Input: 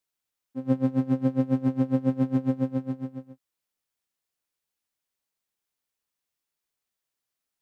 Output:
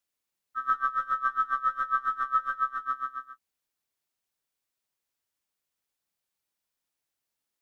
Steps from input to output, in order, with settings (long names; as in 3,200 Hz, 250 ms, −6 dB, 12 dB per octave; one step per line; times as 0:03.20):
neighbouring bands swapped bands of 1,000 Hz
0:00.70–0:02.86: flanger 1.4 Hz, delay 4.7 ms, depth 1.1 ms, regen +27%